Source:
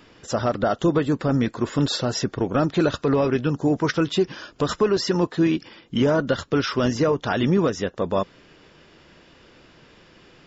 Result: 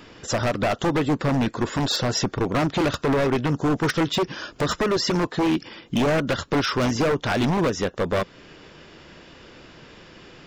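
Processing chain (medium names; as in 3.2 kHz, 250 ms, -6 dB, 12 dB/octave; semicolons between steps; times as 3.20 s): in parallel at -1.5 dB: compression 8:1, threshold -29 dBFS, peak gain reduction 14 dB; on the sum: wavefolder -15.5 dBFS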